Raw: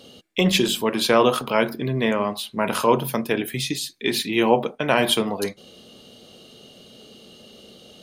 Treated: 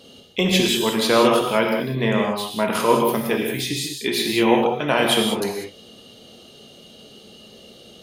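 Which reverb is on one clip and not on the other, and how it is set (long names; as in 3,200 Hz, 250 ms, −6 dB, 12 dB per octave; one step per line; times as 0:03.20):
reverb whose tail is shaped and stops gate 220 ms flat, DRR 0.5 dB
level −1 dB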